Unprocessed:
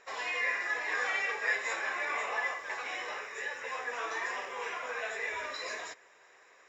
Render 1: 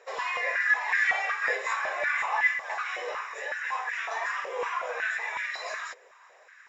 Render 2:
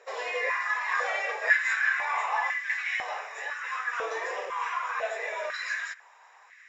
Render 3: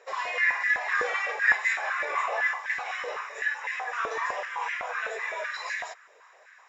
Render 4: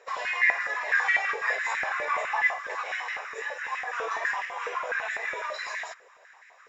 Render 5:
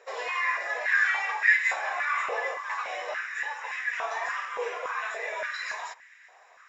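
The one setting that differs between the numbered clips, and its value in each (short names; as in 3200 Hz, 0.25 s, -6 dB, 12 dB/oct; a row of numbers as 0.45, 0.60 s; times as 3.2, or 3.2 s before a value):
stepped high-pass, rate: 5.4, 2, 7.9, 12, 3.5 Hz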